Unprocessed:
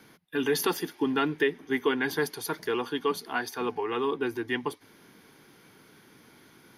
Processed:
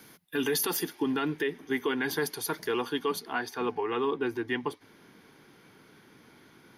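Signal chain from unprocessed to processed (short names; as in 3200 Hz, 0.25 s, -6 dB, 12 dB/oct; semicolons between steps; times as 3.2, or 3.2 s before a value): high shelf 5900 Hz +10.5 dB, from 0.84 s +4 dB, from 3.19 s -7 dB; limiter -19.5 dBFS, peak gain reduction 7 dB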